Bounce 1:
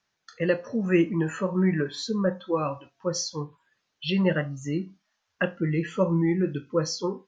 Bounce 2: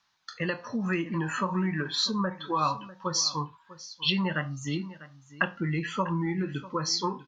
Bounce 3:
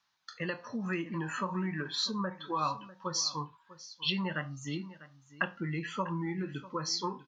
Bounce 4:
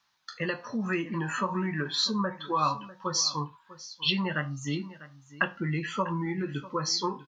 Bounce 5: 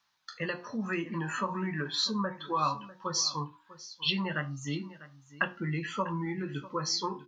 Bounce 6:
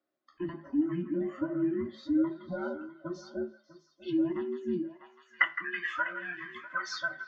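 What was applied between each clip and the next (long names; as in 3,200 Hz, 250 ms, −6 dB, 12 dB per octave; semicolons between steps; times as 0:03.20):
downward compressor, threshold −24 dBFS, peak gain reduction 8 dB; graphic EQ with 10 bands 500 Hz −9 dB, 1,000 Hz +11 dB, 4,000 Hz +8 dB; single-tap delay 647 ms −17.5 dB
low-shelf EQ 87 Hz −5.5 dB; level −5 dB
double-tracking delay 14 ms −11 dB; level +4.5 dB
mains-hum notches 60/120/180/240/300/360 Hz; level −2.5 dB
frequency inversion band by band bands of 500 Hz; echo through a band-pass that steps 164 ms, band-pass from 1,500 Hz, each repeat 0.7 octaves, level −9.5 dB; band-pass filter sweep 290 Hz → 1,700 Hz, 0:04.76–0:05.38; level +7 dB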